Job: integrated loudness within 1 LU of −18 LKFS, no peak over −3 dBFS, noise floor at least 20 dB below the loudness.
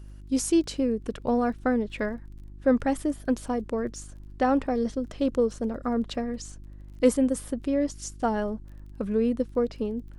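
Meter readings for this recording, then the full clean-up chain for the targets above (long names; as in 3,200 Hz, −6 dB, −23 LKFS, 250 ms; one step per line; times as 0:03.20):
crackle rate 23 per second; mains hum 50 Hz; hum harmonics up to 350 Hz; level of the hum −41 dBFS; integrated loudness −27.5 LKFS; sample peak −9.0 dBFS; target loudness −18.0 LKFS
→ click removal
hum removal 50 Hz, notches 7
level +9.5 dB
brickwall limiter −3 dBFS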